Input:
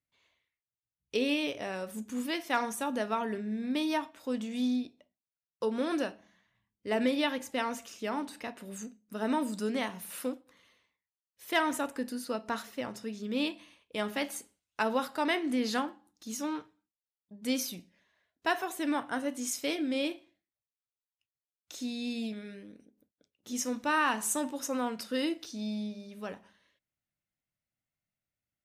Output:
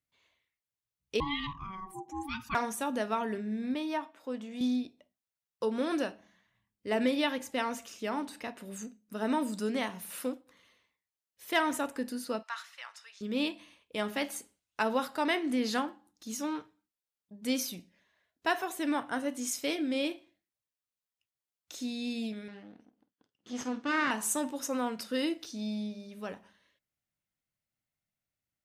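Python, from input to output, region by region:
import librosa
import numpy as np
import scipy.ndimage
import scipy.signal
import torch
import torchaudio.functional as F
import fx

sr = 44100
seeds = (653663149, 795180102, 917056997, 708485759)

y = fx.chain(x, sr, fx.envelope_sharpen(power=2.0),
    fx.ring_mod(carrier_hz=570.0),
    fx.notch_comb(f0_hz=440.0), at=(1.2, 2.55))
y = fx.chain(y, sr, fx.highpass(hz=370.0, slope=6),
    fx.high_shelf(hz=2700.0, db=-10.5), at=(3.74, 4.61))
y = fx.chain(y, sr, fx.highpass(hz=1100.0, slope=24),
    fx.air_absorb(metres=52.0), at=(12.43, 13.21))
y = fx.chain(y, sr, fx.lower_of_two(delay_ms=0.64),
    fx.bandpass_edges(low_hz=160.0, high_hz=4400.0),
    fx.doubler(ms=49.0, db=-14), at=(22.48, 24.11))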